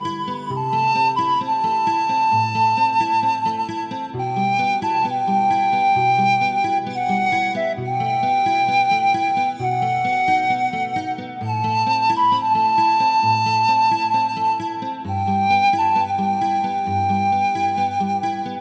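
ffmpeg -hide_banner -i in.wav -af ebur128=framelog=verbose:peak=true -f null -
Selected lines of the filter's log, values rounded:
Integrated loudness:
  I:         -19.0 LUFS
  Threshold: -29.0 LUFS
Loudness range:
  LRA:         1.9 LU
  Threshold: -38.8 LUFS
  LRA low:   -19.6 LUFS
  LRA high:  -17.7 LUFS
True peak:
  Peak:       -8.2 dBFS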